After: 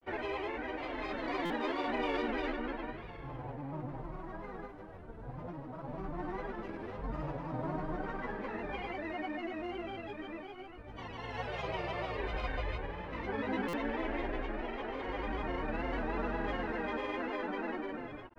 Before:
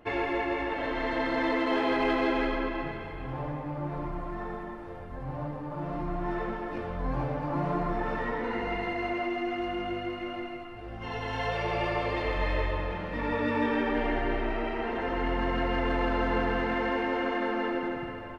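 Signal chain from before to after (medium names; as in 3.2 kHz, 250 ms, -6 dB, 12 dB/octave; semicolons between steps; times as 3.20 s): granulator 100 ms, pitch spread up and down by 3 st; buffer glitch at 1.45/13.68 s, samples 256, times 8; trim -6.5 dB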